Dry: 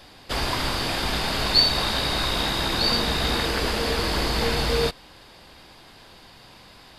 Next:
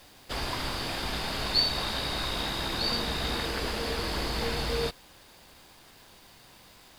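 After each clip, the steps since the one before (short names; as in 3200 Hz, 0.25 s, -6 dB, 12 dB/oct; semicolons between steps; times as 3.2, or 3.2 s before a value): requantised 8-bit, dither none; gain -7 dB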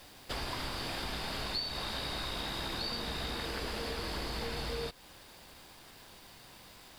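notch 6500 Hz, Q 29; compressor 4:1, threshold -35 dBFS, peak gain reduction 13 dB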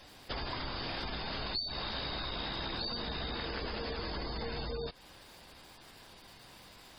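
spectral gate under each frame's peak -20 dB strong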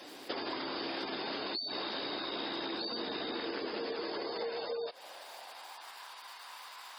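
high-pass sweep 320 Hz -> 1000 Hz, 3.76–6.08; compressor, threshold -39 dBFS, peak gain reduction 7.5 dB; gain +4.5 dB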